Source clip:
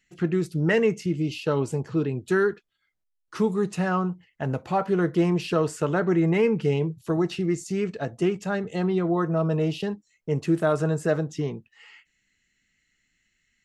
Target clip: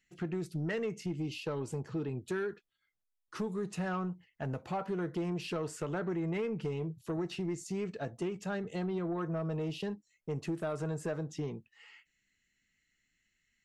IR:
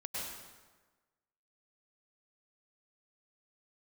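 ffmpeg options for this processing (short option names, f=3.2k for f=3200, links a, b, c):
-af "acompressor=threshold=-23dB:ratio=6,asoftclip=type=tanh:threshold=-20.5dB,volume=-6.5dB"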